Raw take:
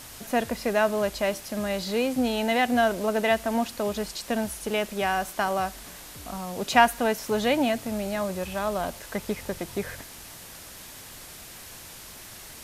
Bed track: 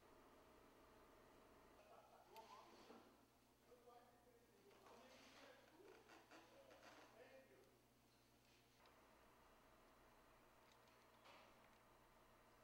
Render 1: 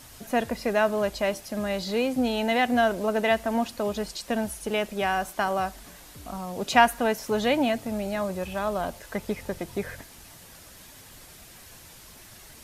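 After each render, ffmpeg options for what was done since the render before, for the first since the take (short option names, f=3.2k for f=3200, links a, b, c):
-af "afftdn=nr=6:nf=-44"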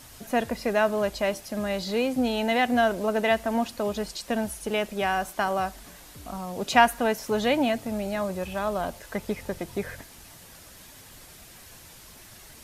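-af anull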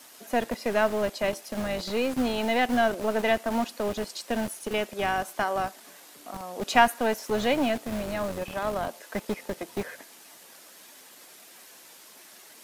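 -filter_complex "[0:a]aeval=exprs='if(lt(val(0),0),0.708*val(0),val(0))':c=same,acrossover=split=230|1300|2400[a][b][c][d];[a]acrusher=bits=5:mix=0:aa=0.000001[e];[e][b][c][d]amix=inputs=4:normalize=0"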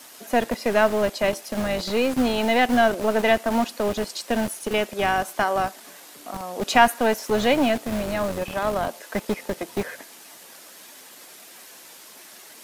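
-af "volume=5dB,alimiter=limit=-3dB:level=0:latency=1"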